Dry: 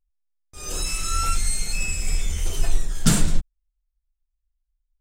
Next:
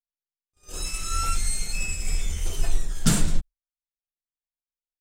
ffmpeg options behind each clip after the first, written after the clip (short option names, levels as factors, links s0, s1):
-af "agate=range=0.0224:threshold=0.0794:ratio=3:detection=peak,volume=0.75"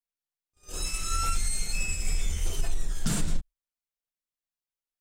-af "alimiter=limit=0.158:level=0:latency=1:release=87,volume=0.891"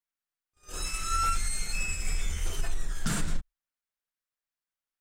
-af "equalizer=f=1500:w=1.1:g=7.5,volume=0.75"